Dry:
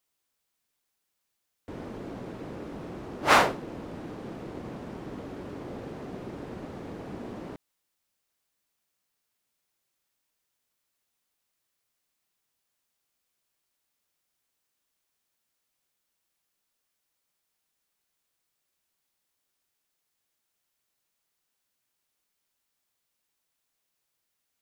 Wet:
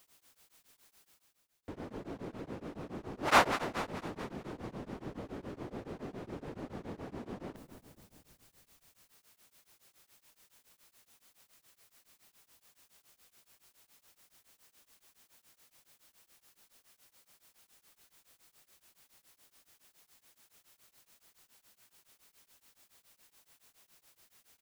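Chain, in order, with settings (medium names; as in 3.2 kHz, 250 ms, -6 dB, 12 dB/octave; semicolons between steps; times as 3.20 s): reverse; upward compressor, threshold -44 dBFS; reverse; frequency-shifting echo 221 ms, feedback 59%, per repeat -40 Hz, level -11 dB; tremolo of two beating tones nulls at 7.1 Hz; trim -2 dB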